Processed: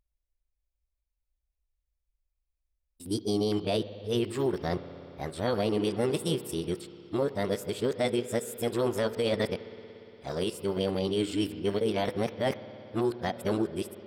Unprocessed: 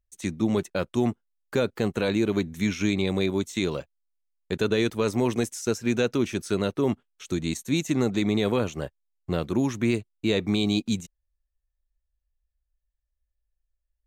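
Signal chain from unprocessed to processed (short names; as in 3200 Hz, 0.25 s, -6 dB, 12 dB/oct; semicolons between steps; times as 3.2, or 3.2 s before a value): whole clip reversed; spring tank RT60 3.6 s, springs 58 ms, chirp 35 ms, DRR 13 dB; formant shift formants +5 st; gain -4 dB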